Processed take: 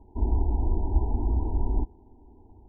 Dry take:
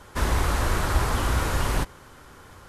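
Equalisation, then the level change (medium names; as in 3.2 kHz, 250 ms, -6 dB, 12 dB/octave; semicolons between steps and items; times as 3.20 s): brick-wall FIR low-pass 1 kHz; tilt shelf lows +9 dB, about 740 Hz; static phaser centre 540 Hz, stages 6; -6.5 dB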